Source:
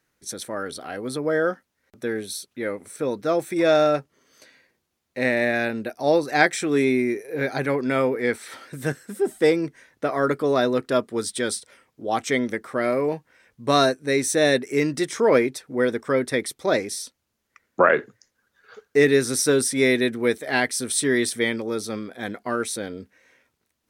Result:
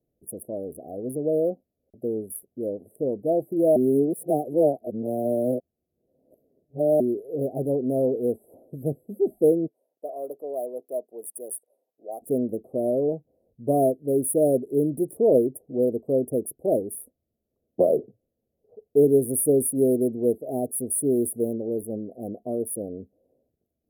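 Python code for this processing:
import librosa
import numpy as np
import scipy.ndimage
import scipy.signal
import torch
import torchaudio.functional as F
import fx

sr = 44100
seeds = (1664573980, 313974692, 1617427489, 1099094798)

y = fx.highpass(x, sr, hz=830.0, slope=12, at=(9.66, 12.21), fade=0.02)
y = fx.edit(y, sr, fx.reverse_span(start_s=3.76, length_s=3.24), tone=tone)
y = fx.wiener(y, sr, points=9)
y = scipy.signal.sosfilt(scipy.signal.cheby1(5, 1.0, [690.0, 10000.0], 'bandstop', fs=sr, output='sos'), y)
y = fx.high_shelf(y, sr, hz=5100.0, db=10.5)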